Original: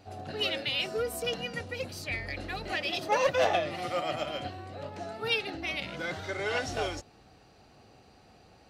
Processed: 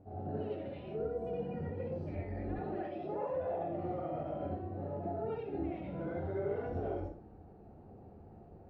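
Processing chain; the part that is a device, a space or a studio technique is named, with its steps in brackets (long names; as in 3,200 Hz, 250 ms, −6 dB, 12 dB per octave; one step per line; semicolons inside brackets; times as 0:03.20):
0:02.48–0:03.33: high-pass filter 130 Hz 12 dB per octave
television next door (downward compressor 5 to 1, threshold −35 dBFS, peak gain reduction 13 dB; low-pass filter 500 Hz 12 dB per octave; convolution reverb RT60 0.40 s, pre-delay 61 ms, DRR −6 dB)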